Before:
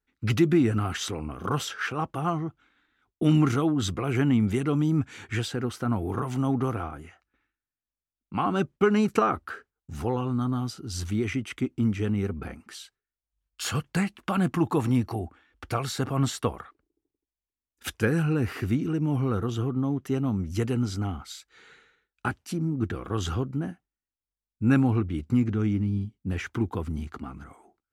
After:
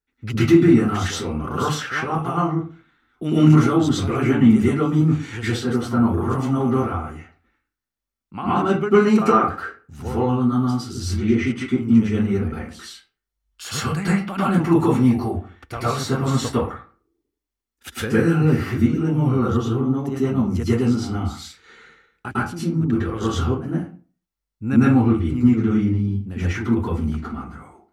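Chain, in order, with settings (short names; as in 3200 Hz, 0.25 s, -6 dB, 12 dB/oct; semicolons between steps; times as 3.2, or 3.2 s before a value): 11.04–11.66 LPF 4000 Hz -> 11000 Hz 12 dB/oct; reverb RT60 0.40 s, pre-delay 0.101 s, DRR -9.5 dB; gain -3.5 dB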